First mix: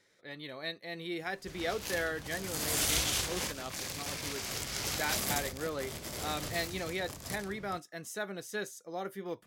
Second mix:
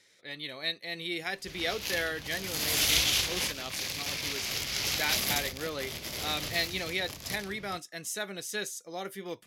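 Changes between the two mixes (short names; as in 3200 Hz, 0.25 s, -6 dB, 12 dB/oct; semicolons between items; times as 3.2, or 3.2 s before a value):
background: add bell 8500 Hz -12.5 dB 0.65 oct; master: add band shelf 5100 Hz +8.5 dB 2.9 oct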